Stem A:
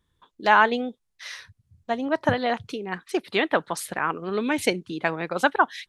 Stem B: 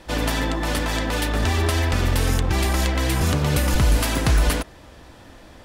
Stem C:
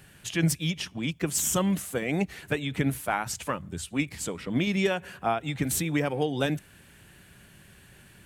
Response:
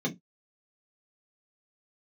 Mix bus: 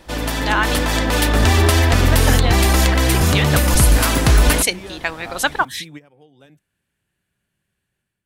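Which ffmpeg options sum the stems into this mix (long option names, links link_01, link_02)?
-filter_complex "[0:a]crystalizer=i=9.5:c=0,volume=-11.5dB,asplit=3[link_01][link_02][link_03];[link_01]atrim=end=0.92,asetpts=PTS-STARTPTS,afade=type=out:start_time=0.916:duration=0.004:curve=hsin[link_04];[link_02]atrim=start=0.92:end=1.58,asetpts=PTS-STARTPTS,volume=0[link_05];[link_03]atrim=start=1.58,asetpts=PTS-STARTPTS,afade=type=in:duration=0.004:curve=hsin[link_06];[link_04][link_05][link_06]concat=n=3:v=0:a=1,asplit=2[link_07][link_08];[1:a]highshelf=frequency=9600:gain=4.5,volume=-0.5dB[link_09];[2:a]volume=-17.5dB[link_10];[link_08]apad=whole_len=364065[link_11];[link_10][link_11]sidechaingate=range=-14dB:threshold=-56dB:ratio=16:detection=peak[link_12];[link_07][link_09][link_12]amix=inputs=3:normalize=0,dynaudnorm=framelen=210:gausssize=5:maxgain=9.5dB"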